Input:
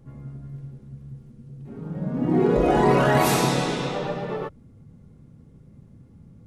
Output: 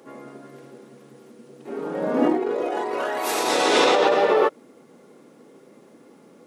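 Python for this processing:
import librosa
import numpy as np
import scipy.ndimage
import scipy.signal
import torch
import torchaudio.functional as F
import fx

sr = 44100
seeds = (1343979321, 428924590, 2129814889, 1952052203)

y = scipy.signal.sosfilt(scipy.signal.butter(4, 340.0, 'highpass', fs=sr, output='sos'), x)
y = fx.over_compress(y, sr, threshold_db=-30.0, ratio=-1.0)
y = F.gain(torch.from_numpy(y), 8.5).numpy()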